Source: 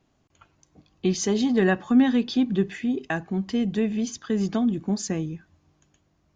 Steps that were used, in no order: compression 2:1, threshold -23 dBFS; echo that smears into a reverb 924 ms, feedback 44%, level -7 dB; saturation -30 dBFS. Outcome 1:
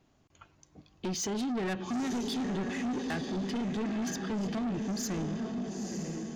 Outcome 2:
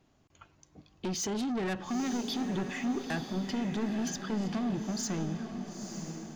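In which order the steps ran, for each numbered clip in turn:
compression > echo that smears into a reverb > saturation; compression > saturation > echo that smears into a reverb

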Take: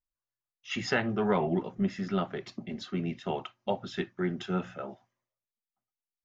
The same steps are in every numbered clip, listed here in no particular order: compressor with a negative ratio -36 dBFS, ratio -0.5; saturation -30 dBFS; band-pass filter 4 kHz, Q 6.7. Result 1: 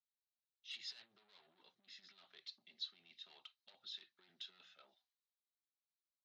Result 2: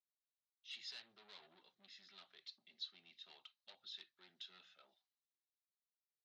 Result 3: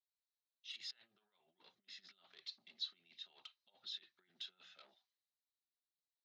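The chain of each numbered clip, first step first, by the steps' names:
saturation > compressor with a negative ratio > band-pass filter; saturation > band-pass filter > compressor with a negative ratio; compressor with a negative ratio > saturation > band-pass filter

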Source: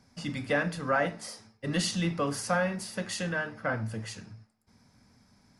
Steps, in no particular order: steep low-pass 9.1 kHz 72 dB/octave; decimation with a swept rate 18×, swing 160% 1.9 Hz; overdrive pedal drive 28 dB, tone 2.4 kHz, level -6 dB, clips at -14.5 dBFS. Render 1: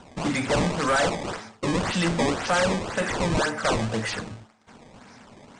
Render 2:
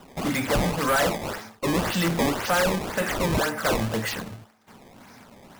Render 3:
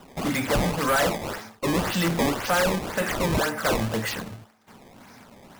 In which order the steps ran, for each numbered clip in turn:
overdrive pedal > decimation with a swept rate > steep low-pass; steep low-pass > overdrive pedal > decimation with a swept rate; overdrive pedal > steep low-pass > decimation with a swept rate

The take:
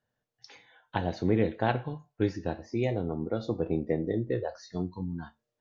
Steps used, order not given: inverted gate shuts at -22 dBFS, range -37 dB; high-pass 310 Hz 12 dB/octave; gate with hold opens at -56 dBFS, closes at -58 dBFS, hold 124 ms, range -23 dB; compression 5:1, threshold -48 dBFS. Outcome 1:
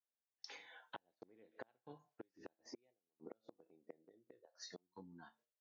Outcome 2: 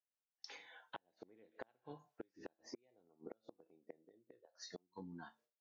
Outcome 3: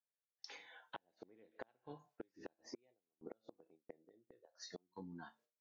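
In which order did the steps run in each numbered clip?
inverted gate > compression > gate with hold > high-pass; gate with hold > inverted gate > high-pass > compression; inverted gate > high-pass > gate with hold > compression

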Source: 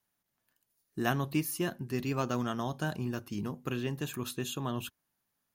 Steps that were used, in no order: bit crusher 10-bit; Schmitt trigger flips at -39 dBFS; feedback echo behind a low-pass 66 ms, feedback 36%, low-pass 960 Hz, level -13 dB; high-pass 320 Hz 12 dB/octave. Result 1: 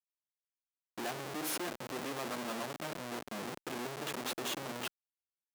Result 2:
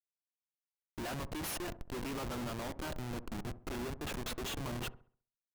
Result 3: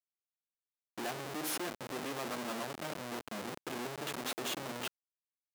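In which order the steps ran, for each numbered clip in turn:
bit crusher > feedback echo behind a low-pass > Schmitt trigger > high-pass; high-pass > bit crusher > Schmitt trigger > feedback echo behind a low-pass; feedback echo behind a low-pass > Schmitt trigger > high-pass > bit crusher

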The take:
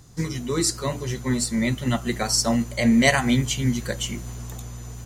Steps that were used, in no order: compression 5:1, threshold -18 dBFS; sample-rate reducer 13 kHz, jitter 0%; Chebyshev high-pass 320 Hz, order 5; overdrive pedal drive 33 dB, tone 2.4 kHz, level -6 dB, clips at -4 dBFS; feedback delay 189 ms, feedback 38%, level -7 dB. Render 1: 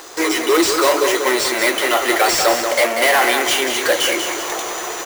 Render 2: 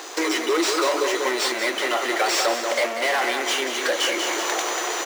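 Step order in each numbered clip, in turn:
compression > overdrive pedal > Chebyshev high-pass > sample-rate reducer > feedback delay; sample-rate reducer > overdrive pedal > feedback delay > compression > Chebyshev high-pass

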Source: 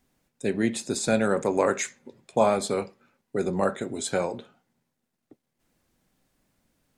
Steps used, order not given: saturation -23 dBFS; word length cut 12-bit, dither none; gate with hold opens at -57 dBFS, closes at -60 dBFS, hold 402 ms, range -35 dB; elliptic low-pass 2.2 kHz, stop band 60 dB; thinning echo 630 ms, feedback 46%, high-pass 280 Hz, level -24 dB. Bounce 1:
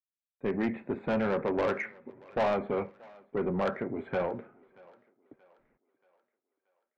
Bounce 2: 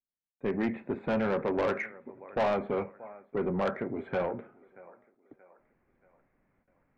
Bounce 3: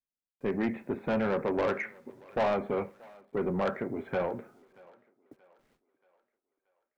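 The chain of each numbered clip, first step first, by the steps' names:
gate with hold > word length cut > elliptic low-pass > saturation > thinning echo; word length cut > thinning echo > gate with hold > elliptic low-pass > saturation; elliptic low-pass > saturation > word length cut > gate with hold > thinning echo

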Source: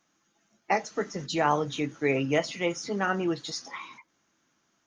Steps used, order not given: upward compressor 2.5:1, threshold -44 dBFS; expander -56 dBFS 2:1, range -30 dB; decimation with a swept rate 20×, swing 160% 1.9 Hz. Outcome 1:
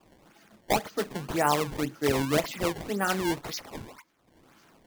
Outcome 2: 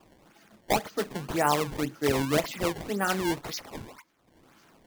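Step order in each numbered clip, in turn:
upward compressor > decimation with a swept rate > expander; decimation with a swept rate > upward compressor > expander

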